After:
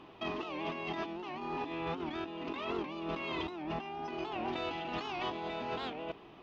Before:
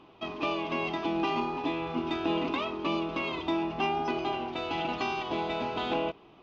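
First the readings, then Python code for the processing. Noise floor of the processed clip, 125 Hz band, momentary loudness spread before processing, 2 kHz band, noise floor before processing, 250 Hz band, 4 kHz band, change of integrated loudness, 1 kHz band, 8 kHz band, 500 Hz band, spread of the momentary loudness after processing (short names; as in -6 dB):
-54 dBFS, -5.5 dB, 3 LU, -6.5 dB, -55 dBFS, -8.0 dB, -7.0 dB, -7.0 dB, -7.5 dB, n/a, -6.5 dB, 3 LU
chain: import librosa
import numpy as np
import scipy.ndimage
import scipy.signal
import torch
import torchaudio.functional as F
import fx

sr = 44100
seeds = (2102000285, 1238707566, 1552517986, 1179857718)

y = fx.peak_eq(x, sr, hz=1800.0, db=7.5, octaves=0.2)
y = fx.over_compress(y, sr, threshold_db=-36.0, ratio=-1.0)
y = fx.record_warp(y, sr, rpm=78.0, depth_cents=160.0)
y = F.gain(torch.from_numpy(y), -3.0).numpy()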